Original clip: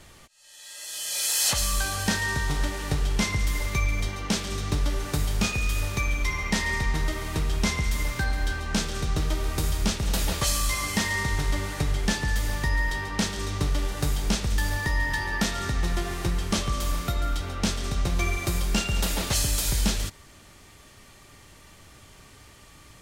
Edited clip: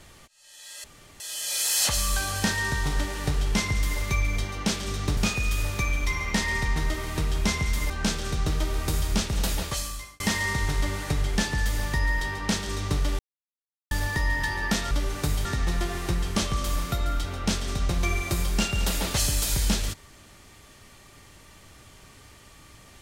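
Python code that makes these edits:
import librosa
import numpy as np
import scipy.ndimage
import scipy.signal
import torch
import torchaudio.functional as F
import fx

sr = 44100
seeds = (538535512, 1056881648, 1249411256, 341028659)

y = fx.edit(x, sr, fx.insert_room_tone(at_s=0.84, length_s=0.36),
    fx.move(start_s=4.81, length_s=0.54, to_s=15.61),
    fx.cut(start_s=8.08, length_s=0.52),
    fx.fade_out_span(start_s=10.1, length_s=0.8),
    fx.silence(start_s=13.89, length_s=0.72), tone=tone)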